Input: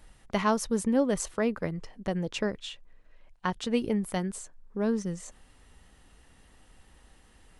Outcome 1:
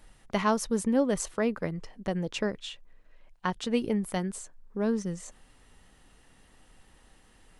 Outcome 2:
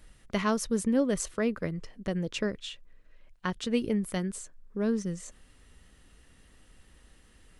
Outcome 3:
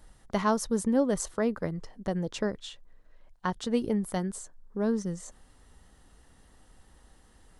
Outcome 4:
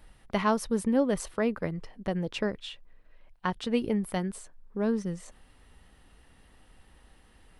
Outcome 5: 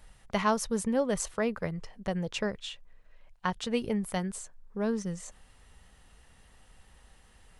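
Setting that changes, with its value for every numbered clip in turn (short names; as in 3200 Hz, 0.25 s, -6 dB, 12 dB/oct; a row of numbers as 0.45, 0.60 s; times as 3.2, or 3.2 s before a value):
bell, frequency: 62, 830, 2500, 6900, 300 Hz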